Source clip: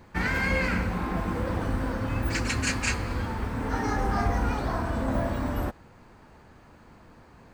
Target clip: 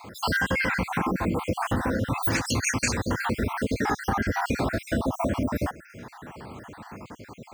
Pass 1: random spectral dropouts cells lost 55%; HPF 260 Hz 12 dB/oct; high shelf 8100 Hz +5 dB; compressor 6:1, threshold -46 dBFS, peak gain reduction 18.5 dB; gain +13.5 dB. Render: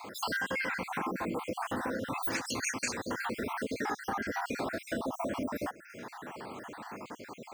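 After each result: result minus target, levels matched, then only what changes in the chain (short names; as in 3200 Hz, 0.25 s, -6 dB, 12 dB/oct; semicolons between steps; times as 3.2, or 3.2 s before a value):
125 Hz band -8.5 dB; compressor: peak gain reduction +7.5 dB
change: HPF 94 Hz 12 dB/oct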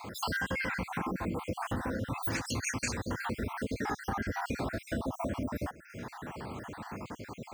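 compressor: peak gain reduction +8.5 dB
change: compressor 6:1, threshold -36 dBFS, peak gain reduction 11 dB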